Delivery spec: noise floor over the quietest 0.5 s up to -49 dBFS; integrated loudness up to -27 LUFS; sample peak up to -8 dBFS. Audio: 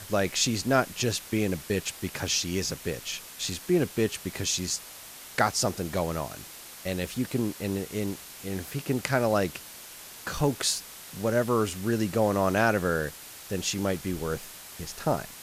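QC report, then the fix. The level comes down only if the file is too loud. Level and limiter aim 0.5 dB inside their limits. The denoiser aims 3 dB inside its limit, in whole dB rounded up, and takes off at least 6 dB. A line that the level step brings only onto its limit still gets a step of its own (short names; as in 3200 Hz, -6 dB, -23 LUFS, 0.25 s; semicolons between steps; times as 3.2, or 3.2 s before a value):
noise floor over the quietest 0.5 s -45 dBFS: fail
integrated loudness -28.5 LUFS: OK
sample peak -8.5 dBFS: OK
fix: denoiser 7 dB, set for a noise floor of -45 dBFS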